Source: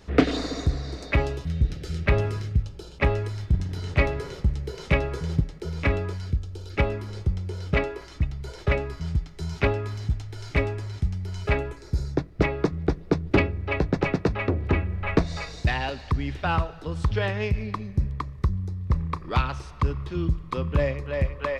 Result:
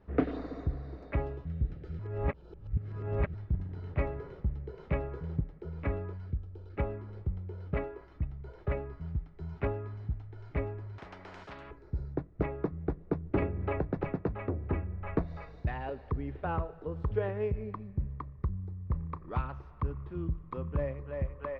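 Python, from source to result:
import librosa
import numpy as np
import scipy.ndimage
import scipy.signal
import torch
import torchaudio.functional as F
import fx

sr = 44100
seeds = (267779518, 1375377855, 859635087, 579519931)

y = fx.spectral_comp(x, sr, ratio=10.0, at=(10.98, 11.71))
y = fx.band_squash(y, sr, depth_pct=100, at=(13.42, 14.09))
y = fx.peak_eq(y, sr, hz=440.0, db=8.0, octaves=0.77, at=(15.86, 17.72))
y = fx.edit(y, sr, fx.reverse_span(start_s=1.99, length_s=1.35), tone=tone)
y = scipy.signal.sosfilt(scipy.signal.butter(2, 1400.0, 'lowpass', fs=sr, output='sos'), y)
y = y * 10.0 ** (-9.0 / 20.0)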